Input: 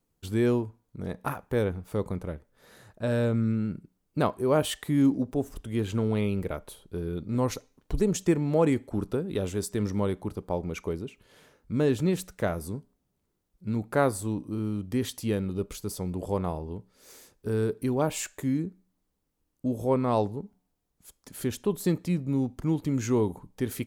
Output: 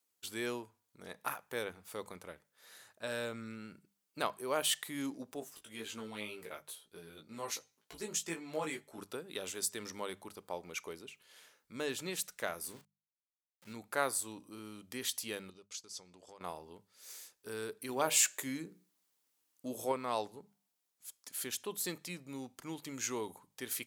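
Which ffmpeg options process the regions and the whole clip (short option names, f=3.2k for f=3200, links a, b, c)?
-filter_complex "[0:a]asettb=1/sr,asplit=3[a][b][c];[a]atrim=end=5.404[d];[b]atrim=start=5.4:end=8.98,asetpts=PTS-STARTPTS,afade=t=in:d=0.004:c=qsin,afade=t=out:st=3.576:d=0.004:c=qsin,flanger=delay=17.5:depth=2:speed=2,asplit=2[e][f];[f]adelay=13,volume=-7dB[g];[e][g]amix=inputs=2:normalize=0,atrim=end_sample=157878[h];[c]atrim=start=8.976[i];[d][h]acrossfade=d=0.004:c1=hsin:c2=qsin[j];[j][i]acrossfade=d=0.004:c1=qsin:c2=hsin,asettb=1/sr,asplit=3[k][l][m];[k]atrim=end=12.644[n];[l]atrim=start=12.64:end=13.73,asetpts=PTS-STARTPTS,afade=t=in:d=0.004:c=qsin,afade=t=out:st=1.086:d=0.004:c=qsin,aeval=exprs='val(0)*gte(abs(val(0)),0.00398)':c=same,asplit=2[o][p];[p]adelay=36,volume=-12.5dB[q];[o][q]amix=inputs=2:normalize=0,atrim=end_sample=48069[r];[m]atrim=start=13.726[s];[n][r]acrossfade=d=0.004:c1=hsin:c2=qsin[t];[t][s]acrossfade=d=0.004:c1=qsin:c2=hsin,asettb=1/sr,asplit=3[u][v][w];[u]atrim=end=15.504[x];[v]atrim=start=15.5:end=16.41,asetpts=PTS-STARTPTS,afade=t=in:d=0.004:c=qsin,afade=t=out:st=0.906:d=0.004:c=qsin,lowpass=f=6.1k:t=q:w=1.9,acompressor=threshold=-37dB:ratio=10:attack=3.2:release=140:knee=1:detection=peak,agate=range=-33dB:threshold=-40dB:ratio=3:release=100:detection=peak[y];[w]atrim=start=16.406[z];[x][y]acrossfade=d=0.004:c1=hsin:c2=qsin[aa];[aa][z]acrossfade=d=0.004:c1=qsin:c2=hsin,asettb=1/sr,asplit=3[ab][ac][ad];[ab]atrim=end=17.894[ae];[ac]atrim=start=17.89:end=19.92,asetpts=PTS-STARTPTS,afade=t=in:d=0.004:c=qsin,afade=t=out:st=2.026:d=0.004:c=qsin,bandreject=f=60:t=h:w=6,bandreject=f=120:t=h:w=6,bandreject=f=180:t=h:w=6,bandreject=f=240:t=h:w=6,bandreject=f=300:t=h:w=6,bandreject=f=360:t=h:w=6,bandreject=f=420:t=h:w=6,bandreject=f=480:t=h:w=6,bandreject=f=540:t=h:w=6,bandreject=f=600:t=h:w=6,acontrast=24[af];[ad]atrim=start=19.916[ag];[ae][af]acrossfade=d=0.004:c1=hsin:c2=qsin[ah];[ah][ag]acrossfade=d=0.004:c1=qsin:c2=hsin,lowpass=f=2.7k:p=1,aderivative,bandreject=f=50:t=h:w=6,bandreject=f=100:t=h:w=6,bandreject=f=150:t=h:w=6,bandreject=f=200:t=h:w=6,volume=11dB"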